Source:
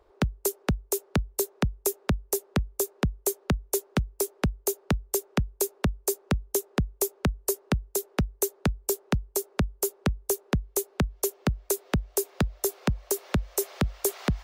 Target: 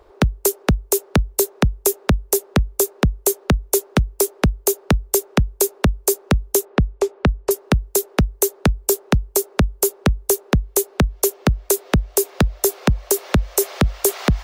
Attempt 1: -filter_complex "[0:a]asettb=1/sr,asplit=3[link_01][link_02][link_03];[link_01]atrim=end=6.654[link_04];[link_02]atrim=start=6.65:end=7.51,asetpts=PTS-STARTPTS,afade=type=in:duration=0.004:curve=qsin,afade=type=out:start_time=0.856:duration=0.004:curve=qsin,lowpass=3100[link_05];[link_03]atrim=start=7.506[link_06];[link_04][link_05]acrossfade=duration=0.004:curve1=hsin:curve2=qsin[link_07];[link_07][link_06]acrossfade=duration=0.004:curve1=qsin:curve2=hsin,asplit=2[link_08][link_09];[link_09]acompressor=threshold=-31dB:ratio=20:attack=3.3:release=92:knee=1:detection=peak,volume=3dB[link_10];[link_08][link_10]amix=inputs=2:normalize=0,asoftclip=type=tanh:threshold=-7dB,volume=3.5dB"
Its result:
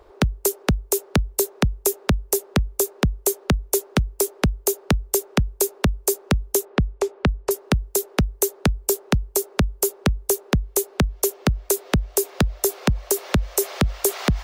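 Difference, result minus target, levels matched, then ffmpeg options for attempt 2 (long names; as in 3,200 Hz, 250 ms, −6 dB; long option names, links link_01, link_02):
downward compressor: peak gain reduction +9.5 dB
-filter_complex "[0:a]asettb=1/sr,asplit=3[link_01][link_02][link_03];[link_01]atrim=end=6.654[link_04];[link_02]atrim=start=6.65:end=7.51,asetpts=PTS-STARTPTS,afade=type=in:duration=0.004:curve=qsin,afade=type=out:start_time=0.856:duration=0.004:curve=qsin,lowpass=3100[link_05];[link_03]atrim=start=7.506[link_06];[link_04][link_05]acrossfade=duration=0.004:curve1=hsin:curve2=qsin[link_07];[link_07][link_06]acrossfade=duration=0.004:curve1=qsin:curve2=hsin,asplit=2[link_08][link_09];[link_09]acompressor=threshold=-21dB:ratio=20:attack=3.3:release=92:knee=1:detection=peak,volume=3dB[link_10];[link_08][link_10]amix=inputs=2:normalize=0,asoftclip=type=tanh:threshold=-7dB,volume=3.5dB"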